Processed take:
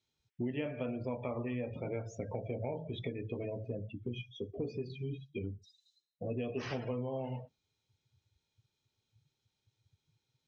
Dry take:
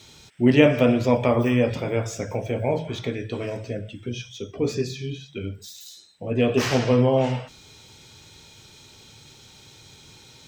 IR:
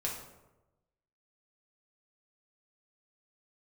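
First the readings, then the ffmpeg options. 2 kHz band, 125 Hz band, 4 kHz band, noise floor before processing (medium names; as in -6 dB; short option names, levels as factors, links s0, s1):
-18.5 dB, -14.5 dB, -18.5 dB, -50 dBFS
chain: -af "lowpass=7000,afftdn=nr=31:nf=-32,acompressor=threshold=0.0282:ratio=6,volume=0.631"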